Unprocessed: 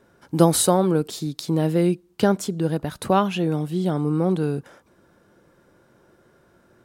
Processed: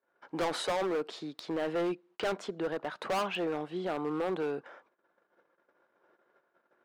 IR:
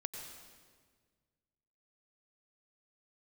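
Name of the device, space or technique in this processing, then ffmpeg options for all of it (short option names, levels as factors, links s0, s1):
walkie-talkie: -af "highpass=540,lowpass=2400,asoftclip=type=hard:threshold=0.0422,agate=range=0.0631:threshold=0.001:ratio=16:detection=peak"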